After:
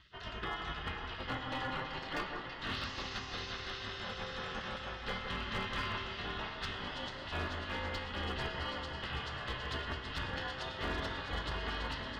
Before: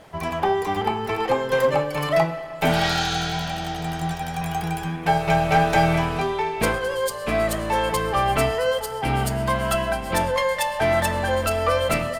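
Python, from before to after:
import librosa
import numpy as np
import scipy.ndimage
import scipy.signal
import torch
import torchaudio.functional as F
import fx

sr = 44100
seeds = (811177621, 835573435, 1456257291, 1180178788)

p1 = x * np.sin(2.0 * np.pi * 140.0 * np.arange(len(x)) / sr)
p2 = fx.low_shelf(p1, sr, hz=200.0, db=-12.0)
p3 = fx.spec_gate(p2, sr, threshold_db=-15, keep='weak')
p4 = scipy.signal.sosfilt(scipy.signal.butter(4, 4200.0, 'lowpass', fs=sr, output='sos'), p3)
p5 = fx.rider(p4, sr, range_db=10, speed_s=0.5)
p6 = p4 + (p5 * 10.0 ** (0.0 / 20.0))
p7 = fx.peak_eq(p6, sr, hz=61.0, db=12.0, octaves=1.7)
p8 = fx.notch(p7, sr, hz=2300.0, q=5.7)
p9 = fx.comb_fb(p8, sr, f0_hz=130.0, decay_s=0.99, harmonics='all', damping=0.0, mix_pct=70)
p10 = p9 + fx.echo_alternate(p9, sr, ms=165, hz=1900.0, feedback_pct=83, wet_db=-6.0, dry=0)
y = np.clip(p10, -10.0 ** (-29.5 / 20.0), 10.0 ** (-29.5 / 20.0))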